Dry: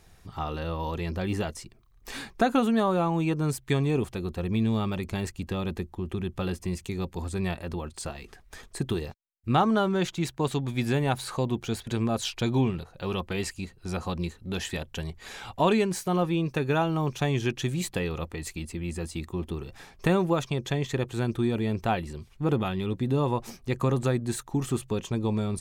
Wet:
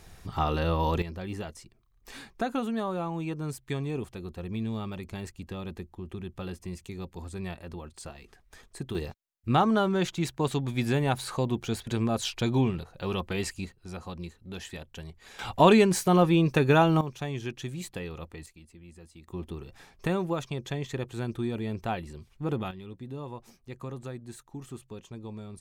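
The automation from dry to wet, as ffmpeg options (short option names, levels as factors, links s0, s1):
-af "asetnsamples=n=441:p=0,asendcmd='1.02 volume volume -7dB;8.95 volume volume -0.5dB;13.72 volume volume -8dB;15.39 volume volume 4.5dB;17.01 volume volume -7.5dB;18.46 volume volume -17dB;19.28 volume volume -5dB;22.71 volume volume -13.5dB',volume=1.78"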